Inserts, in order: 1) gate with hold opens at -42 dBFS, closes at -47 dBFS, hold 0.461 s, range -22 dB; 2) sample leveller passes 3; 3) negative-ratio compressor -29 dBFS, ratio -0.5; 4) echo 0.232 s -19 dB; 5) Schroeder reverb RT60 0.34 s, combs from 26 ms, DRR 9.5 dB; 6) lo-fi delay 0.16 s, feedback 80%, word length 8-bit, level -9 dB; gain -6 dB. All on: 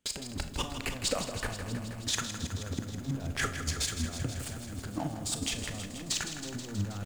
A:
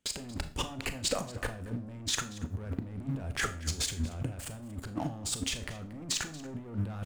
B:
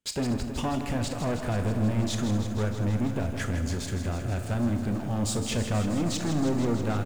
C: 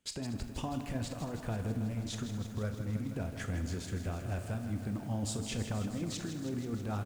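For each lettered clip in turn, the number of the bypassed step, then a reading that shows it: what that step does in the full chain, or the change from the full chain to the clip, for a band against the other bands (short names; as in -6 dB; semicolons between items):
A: 6, momentary loudness spread change +1 LU; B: 3, crest factor change -6.0 dB; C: 2, 4 kHz band -8.0 dB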